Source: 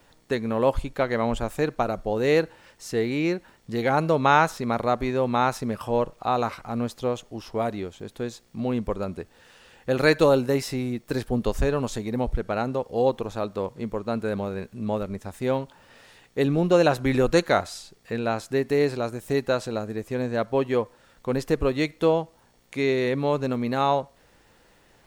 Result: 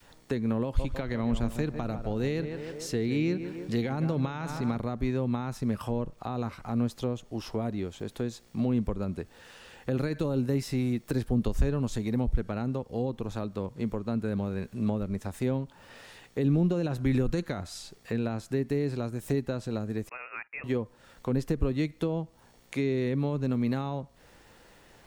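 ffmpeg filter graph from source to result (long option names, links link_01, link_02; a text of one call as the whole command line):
ffmpeg -i in.wav -filter_complex "[0:a]asettb=1/sr,asplit=3[link_01][link_02][link_03];[link_01]atrim=end=0.644[link_04];[link_02]atrim=start=0.64:end=4.78,asetpts=PTS-STARTPTS,afade=type=in:duration=0.004:curve=qsin,afade=type=out:start_time=4.136:duration=0.004:curve=qsin,equalizer=frequency=3600:width_type=o:width=1.8:gain=4.5,asplit=2[link_05][link_06];[link_06]adelay=152,lowpass=frequency=1600:poles=1,volume=-11dB,asplit=2[link_07][link_08];[link_08]adelay=152,lowpass=frequency=1600:poles=1,volume=0.53,asplit=2[link_09][link_10];[link_10]adelay=152,lowpass=frequency=1600:poles=1,volume=0.53,asplit=2[link_11][link_12];[link_12]adelay=152,lowpass=frequency=1600:poles=1,volume=0.53,asplit=2[link_13][link_14];[link_14]adelay=152,lowpass=frequency=1600:poles=1,volume=0.53,asplit=2[link_15][link_16];[link_16]adelay=152,lowpass=frequency=1600:poles=1,volume=0.53[link_17];[link_05][link_07][link_09][link_11][link_13][link_15][link_17]amix=inputs=7:normalize=0,atrim=end_sample=182574[link_18];[link_03]atrim=start=4.776[link_19];[link_04][link_18]acrossfade=duration=0.004:curve1=hsin:curve2=qsin[link_20];[link_20][link_19]acrossfade=duration=0.004:curve1=qsin:curve2=hsin,asettb=1/sr,asplit=3[link_21][link_22][link_23];[link_21]atrim=end=20.094[link_24];[link_22]atrim=start=20.09:end=20.64,asetpts=PTS-STARTPTS,afade=type=in:duration=0.004:curve=qsin,afade=type=out:start_time=0.546:duration=0.004:curve=qsin,agate=range=-20dB:threshold=-37dB:ratio=16:release=100:detection=peak,highpass=1200,lowpass=frequency=2600:width_type=q:width=0.5098,lowpass=frequency=2600:width_type=q:width=0.6013,lowpass=frequency=2600:width_type=q:width=0.9,lowpass=frequency=2600:width_type=q:width=2.563,afreqshift=-3000[link_25];[link_23]atrim=start=20.636[link_26];[link_24][link_25]acrossfade=duration=0.004:curve1=hsin:curve2=qsin[link_27];[link_27][link_26]acrossfade=duration=0.004:curve1=qsin:curve2=hsin,adynamicequalizer=threshold=0.0178:dfrequency=530:dqfactor=0.75:tfrequency=530:tqfactor=0.75:attack=5:release=100:ratio=0.375:range=1.5:mode=cutabove:tftype=bell,alimiter=limit=-15.5dB:level=0:latency=1,acrossover=split=310[link_28][link_29];[link_29]acompressor=threshold=-38dB:ratio=6[link_30];[link_28][link_30]amix=inputs=2:normalize=0,volume=2dB" out.wav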